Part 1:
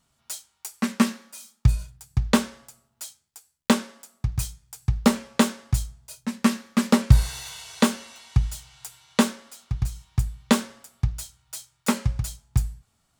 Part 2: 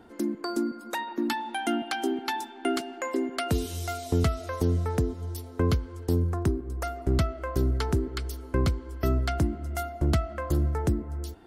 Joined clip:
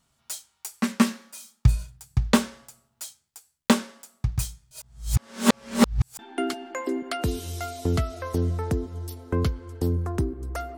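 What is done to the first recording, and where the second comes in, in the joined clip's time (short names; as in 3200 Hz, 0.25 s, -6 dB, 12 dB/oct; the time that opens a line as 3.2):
part 1
4.71–6.19 reverse
6.19 switch to part 2 from 2.46 s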